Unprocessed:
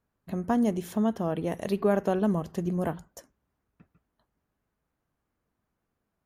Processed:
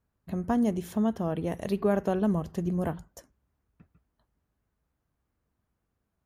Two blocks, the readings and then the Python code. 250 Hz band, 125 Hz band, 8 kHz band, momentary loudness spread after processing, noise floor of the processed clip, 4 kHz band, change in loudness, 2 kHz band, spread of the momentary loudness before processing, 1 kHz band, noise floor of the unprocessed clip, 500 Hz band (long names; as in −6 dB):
−0.5 dB, +0.5 dB, −2.0 dB, 8 LU, −81 dBFS, −2.0 dB, −0.5 dB, −2.0 dB, 8 LU, −2.0 dB, −82 dBFS, −1.5 dB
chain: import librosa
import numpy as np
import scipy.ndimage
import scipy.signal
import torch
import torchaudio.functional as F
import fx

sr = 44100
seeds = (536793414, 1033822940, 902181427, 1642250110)

y = fx.peak_eq(x, sr, hz=63.0, db=8.5, octaves=2.0)
y = y * librosa.db_to_amplitude(-2.0)